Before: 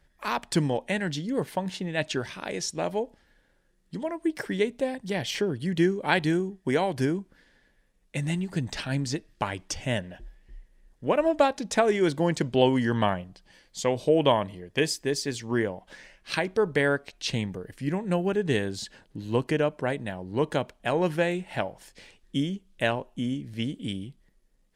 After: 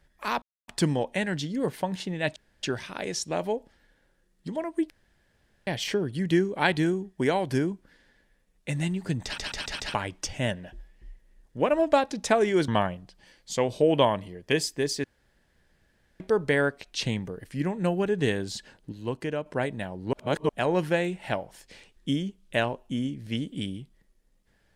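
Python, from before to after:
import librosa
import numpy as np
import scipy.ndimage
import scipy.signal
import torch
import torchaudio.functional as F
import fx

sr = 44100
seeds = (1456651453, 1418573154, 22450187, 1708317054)

y = fx.edit(x, sr, fx.insert_silence(at_s=0.42, length_s=0.26),
    fx.insert_room_tone(at_s=2.1, length_s=0.27),
    fx.room_tone_fill(start_s=4.37, length_s=0.77),
    fx.stutter_over(start_s=8.71, slice_s=0.14, count=5),
    fx.cut(start_s=12.15, length_s=0.8),
    fx.room_tone_fill(start_s=15.31, length_s=1.16),
    fx.clip_gain(start_s=19.19, length_s=0.54, db=-6.0),
    fx.reverse_span(start_s=20.4, length_s=0.36), tone=tone)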